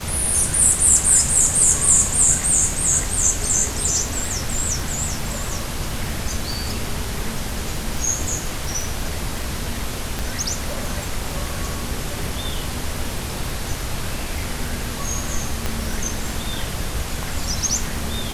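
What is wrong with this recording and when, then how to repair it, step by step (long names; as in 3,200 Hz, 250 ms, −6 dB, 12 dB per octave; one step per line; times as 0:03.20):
surface crackle 42 per second −26 dBFS
0:10.19: click
0:15.66: click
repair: click removal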